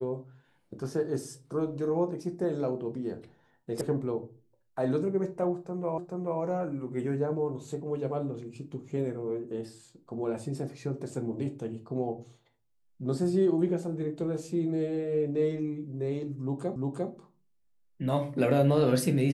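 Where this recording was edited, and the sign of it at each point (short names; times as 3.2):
3.81 sound cut off
5.98 repeat of the last 0.43 s
16.76 repeat of the last 0.35 s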